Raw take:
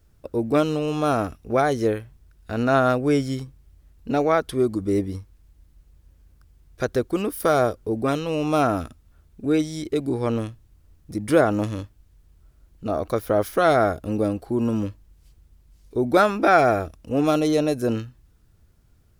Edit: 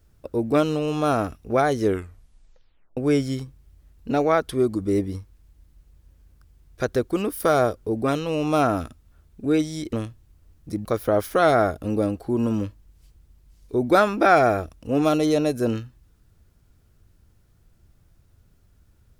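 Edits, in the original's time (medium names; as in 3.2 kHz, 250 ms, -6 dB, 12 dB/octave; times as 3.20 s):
1.80 s: tape stop 1.17 s
9.93–10.35 s: delete
11.27–13.07 s: delete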